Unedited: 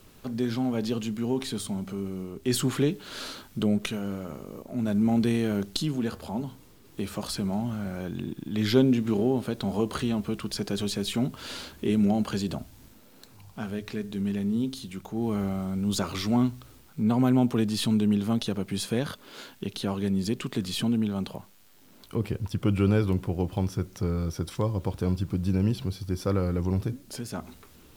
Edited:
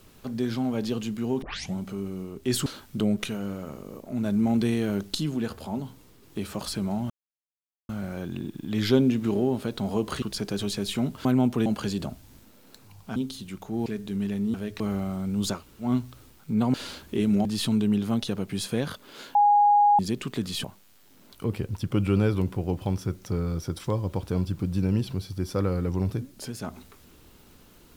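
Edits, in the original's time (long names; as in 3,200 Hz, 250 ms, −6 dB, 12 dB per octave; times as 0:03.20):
0:01.42: tape start 0.33 s
0:02.66–0:03.28: remove
0:07.72: splice in silence 0.79 s
0:10.05–0:10.41: remove
0:11.44–0:12.15: swap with 0:17.23–0:17.64
0:13.65–0:13.91: swap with 0:14.59–0:15.29
0:16.06–0:16.35: fill with room tone, crossfade 0.16 s
0:19.54–0:20.18: beep over 824 Hz −15 dBFS
0:20.83–0:21.35: remove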